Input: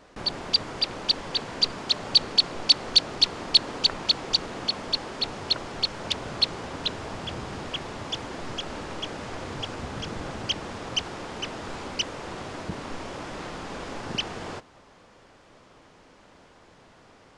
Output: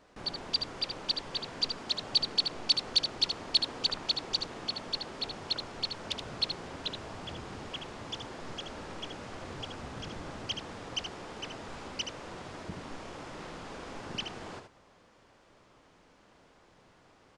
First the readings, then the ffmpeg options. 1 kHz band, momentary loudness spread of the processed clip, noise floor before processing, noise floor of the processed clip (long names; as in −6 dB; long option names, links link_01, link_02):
−7.0 dB, 15 LU, −55 dBFS, −62 dBFS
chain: -af "aecho=1:1:75:0.447,volume=-8dB"